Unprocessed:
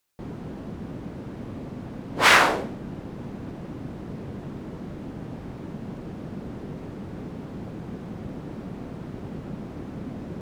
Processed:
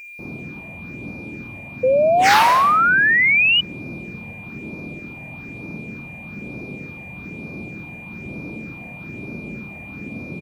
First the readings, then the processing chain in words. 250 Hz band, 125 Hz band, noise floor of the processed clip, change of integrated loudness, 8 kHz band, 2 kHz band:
+1.0 dB, +1.0 dB, -37 dBFS, +15.0 dB, +0.5 dB, +9.0 dB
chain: bass shelf 270 Hz +5 dB; phase shifter stages 6, 1.1 Hz, lowest notch 340–2500 Hz; feedback delay 82 ms, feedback 47%, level -13.5 dB; upward compressor, threshold -53 dBFS; high-pass 180 Hz 6 dB/octave; treble shelf 6.1 kHz +6 dB; doubling 50 ms -3 dB; gated-style reverb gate 280 ms flat, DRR 8 dB; whistle 2.4 kHz -35 dBFS; painted sound rise, 1.83–3.61 s, 500–3000 Hz -14 dBFS; trim -1 dB

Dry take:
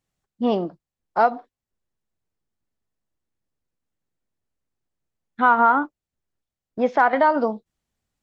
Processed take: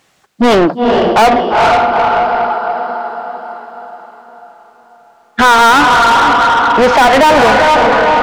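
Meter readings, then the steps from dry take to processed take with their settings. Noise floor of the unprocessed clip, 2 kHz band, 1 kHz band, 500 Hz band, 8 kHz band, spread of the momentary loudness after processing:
under -85 dBFS, +15.5 dB, +14.0 dB, +14.5 dB, no reading, 15 LU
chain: echo that smears into a reverb 453 ms, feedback 47%, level -10 dB; overdrive pedal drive 35 dB, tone 3.5 kHz, clips at -5.5 dBFS; trim +4.5 dB

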